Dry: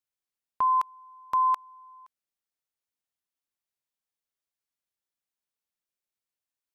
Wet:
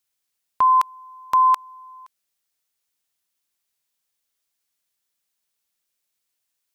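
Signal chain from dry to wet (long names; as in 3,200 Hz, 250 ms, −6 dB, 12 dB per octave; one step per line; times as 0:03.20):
high-shelf EQ 2,100 Hz +8 dB
level +6 dB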